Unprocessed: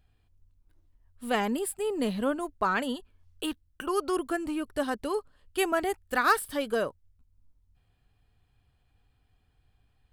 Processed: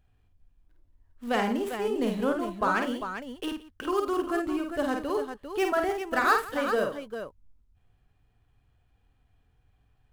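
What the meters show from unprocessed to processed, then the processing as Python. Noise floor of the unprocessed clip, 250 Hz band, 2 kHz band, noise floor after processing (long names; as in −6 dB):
−70 dBFS, +2.0 dB, +1.0 dB, −68 dBFS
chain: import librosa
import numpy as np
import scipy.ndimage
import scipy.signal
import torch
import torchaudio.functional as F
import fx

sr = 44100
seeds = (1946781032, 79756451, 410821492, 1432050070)

p1 = scipy.ndimage.median_filter(x, 9, mode='constant')
y = p1 + fx.echo_multitap(p1, sr, ms=(50, 85, 172, 399), db=(-4.5, -16.5, -19.0, -8.0), dry=0)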